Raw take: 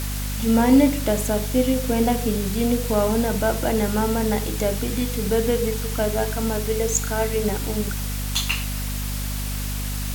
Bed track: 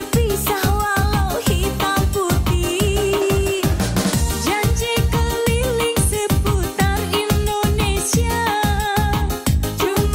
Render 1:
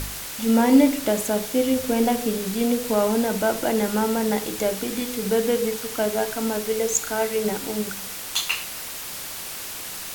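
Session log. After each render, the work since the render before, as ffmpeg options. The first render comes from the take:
-af "bandreject=f=50:t=h:w=4,bandreject=f=100:t=h:w=4,bandreject=f=150:t=h:w=4,bandreject=f=200:t=h:w=4,bandreject=f=250:t=h:w=4"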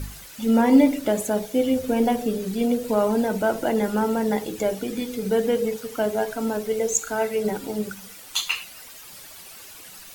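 -af "afftdn=nr=12:nf=-34"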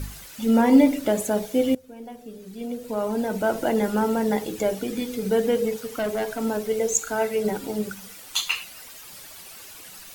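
-filter_complex "[0:a]asettb=1/sr,asplit=3[a][b][c];[a]atrim=end=5.924[d];[b]atrim=start=5.92:end=6.44,asetpts=PTS-STARTPTS,afade=t=in:d=0.004:c=qsin,afade=t=out:st=0.516:d=0.004:c=qsin,volume=22dB,asoftclip=hard,volume=-22dB[e];[c]atrim=start=6.436[f];[d][e]acrossfade=d=0.004:c1=hsin:c2=qsin[g];[g][f]acrossfade=d=0.004:c1=qsin:c2=hsin,asplit=2[h][i];[h]atrim=end=1.75,asetpts=PTS-STARTPTS,afade=t=out:st=1.746:d=0.004:c=hsin:silence=0.0891251[j];[i]atrim=start=1.75,asetpts=PTS-STARTPTS,afade=t=in:d=1.83:c=qua:silence=0.0891251[k];[j][k]concat=n=2:v=0:a=1"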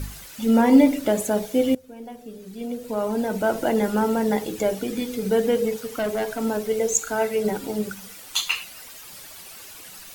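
-af "volume=1dB"

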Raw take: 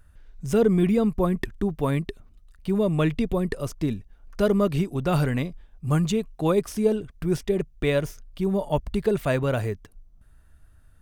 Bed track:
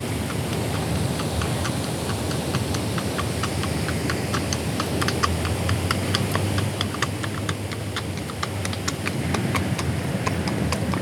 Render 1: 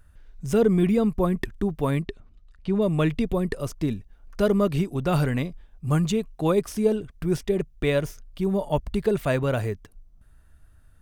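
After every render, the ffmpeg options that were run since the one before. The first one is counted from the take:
-filter_complex "[0:a]asettb=1/sr,asplit=3[a][b][c];[a]atrim=end=2.044[d];[b]atrim=start=2.04:end=2.82,asetpts=PTS-STARTPTS,afade=t=in:d=0.004:c=qsin,afade=t=out:st=0.776:d=0.004:c=qsin,lowpass=5.1k[e];[c]atrim=start=2.816[f];[d][e]acrossfade=d=0.004:c1=hsin:c2=qsin[g];[g][f]acrossfade=d=0.004:c1=qsin:c2=hsin"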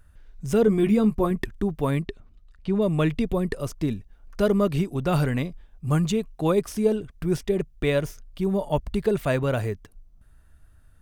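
-filter_complex "[0:a]asettb=1/sr,asplit=3[a][b][c];[a]atrim=end=0.664[d];[b]atrim=start=0.66:end=1.31,asetpts=PTS-STARTPTS,afade=t=in:d=0.004:c=qsin,afade=t=out:st=0.646:d=0.004:c=qsin,asplit=2[e][f];[f]adelay=14,volume=-7dB[g];[e][g]amix=inputs=2:normalize=0,atrim=end_sample=28665[h];[c]atrim=start=1.306[i];[d][h]acrossfade=d=0.004:c1=hsin:c2=qsin[j];[j][i]acrossfade=d=0.004:c1=qsin:c2=hsin"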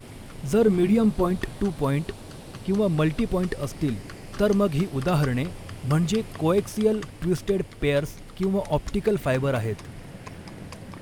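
-filter_complex "[1:a]volume=-16dB[a];[0:a][a]amix=inputs=2:normalize=0"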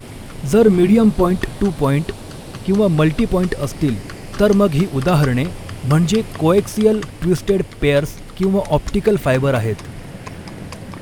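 -af "volume=8dB"

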